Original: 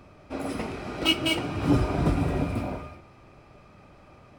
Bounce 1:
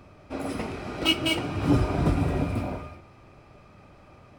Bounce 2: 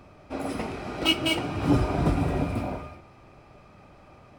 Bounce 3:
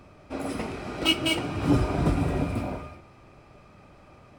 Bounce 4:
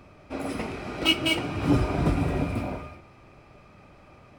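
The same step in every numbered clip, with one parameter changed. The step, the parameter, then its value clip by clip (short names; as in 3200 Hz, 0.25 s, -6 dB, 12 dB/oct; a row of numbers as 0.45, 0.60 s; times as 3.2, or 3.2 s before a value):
bell, frequency: 94, 780, 8300, 2300 Hz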